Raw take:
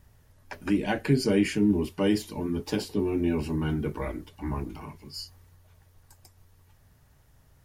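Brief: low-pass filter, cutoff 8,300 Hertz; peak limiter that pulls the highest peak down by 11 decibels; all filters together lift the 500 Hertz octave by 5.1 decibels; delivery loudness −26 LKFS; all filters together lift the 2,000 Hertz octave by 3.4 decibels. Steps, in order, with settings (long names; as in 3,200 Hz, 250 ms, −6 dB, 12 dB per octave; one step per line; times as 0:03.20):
low-pass filter 8,300 Hz
parametric band 500 Hz +6.5 dB
parametric band 2,000 Hz +4 dB
level +4 dB
brickwall limiter −15 dBFS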